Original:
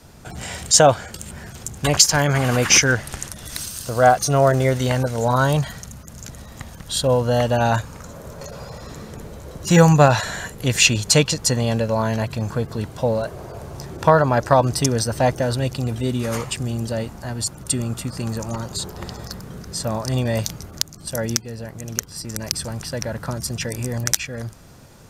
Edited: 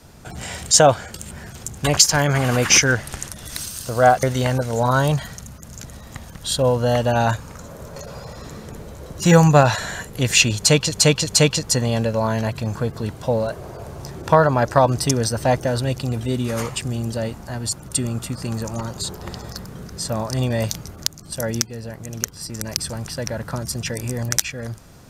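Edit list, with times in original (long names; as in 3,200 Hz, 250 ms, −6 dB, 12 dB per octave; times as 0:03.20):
0:04.23–0:04.68: remove
0:11.02–0:11.37: repeat, 3 plays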